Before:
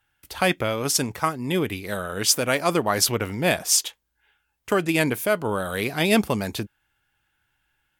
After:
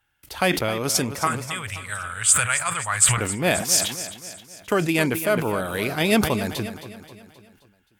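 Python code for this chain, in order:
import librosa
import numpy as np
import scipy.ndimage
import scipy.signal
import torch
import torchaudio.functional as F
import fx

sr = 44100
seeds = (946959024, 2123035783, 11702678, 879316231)

y = fx.curve_eq(x, sr, hz=(110.0, 290.0, 1400.0, 3300.0, 5600.0, 8100.0, 12000.0), db=(0, -30, 3, -1, -13, 14, -12), at=(1.27, 3.18))
y = fx.echo_feedback(y, sr, ms=264, feedback_pct=51, wet_db=-13)
y = fx.sustainer(y, sr, db_per_s=81.0)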